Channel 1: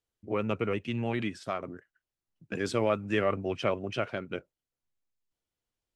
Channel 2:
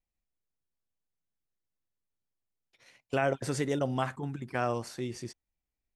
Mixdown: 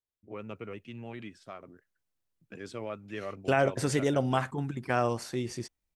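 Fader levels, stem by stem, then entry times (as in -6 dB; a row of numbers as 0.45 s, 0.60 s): -11.0 dB, +3.0 dB; 0.00 s, 0.35 s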